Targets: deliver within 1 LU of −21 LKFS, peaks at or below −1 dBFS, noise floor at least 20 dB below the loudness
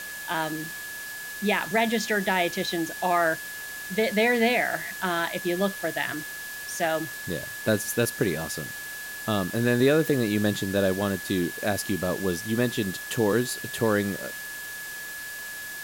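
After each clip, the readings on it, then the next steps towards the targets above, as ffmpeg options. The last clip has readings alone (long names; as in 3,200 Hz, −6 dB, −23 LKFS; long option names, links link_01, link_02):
interfering tone 1,700 Hz; level of the tone −36 dBFS; background noise floor −37 dBFS; target noise floor −47 dBFS; integrated loudness −26.5 LKFS; sample peak −9.5 dBFS; target loudness −21.0 LKFS
→ -af "bandreject=frequency=1700:width=30"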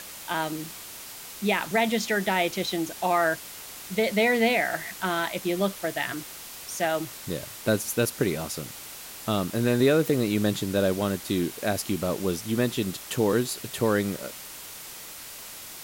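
interfering tone none found; background noise floor −42 dBFS; target noise floor −47 dBFS
→ -af "afftdn=noise_reduction=6:noise_floor=-42"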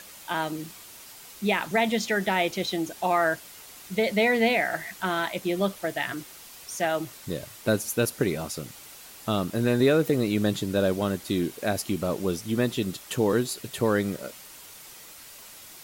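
background noise floor −47 dBFS; integrated loudness −26.5 LKFS; sample peak −10.0 dBFS; target loudness −21.0 LKFS
→ -af "volume=5.5dB"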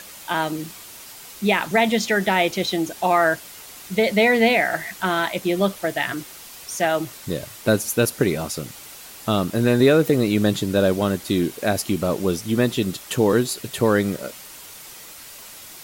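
integrated loudness −21.0 LKFS; sample peak −4.5 dBFS; background noise floor −41 dBFS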